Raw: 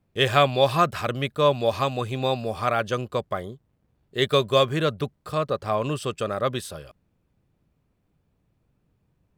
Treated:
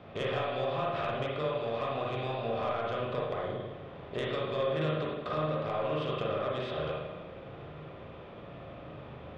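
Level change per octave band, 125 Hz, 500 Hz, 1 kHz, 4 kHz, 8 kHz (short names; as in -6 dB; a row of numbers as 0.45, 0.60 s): -8.5 dB, -8.0 dB, -9.5 dB, -13.0 dB, under -20 dB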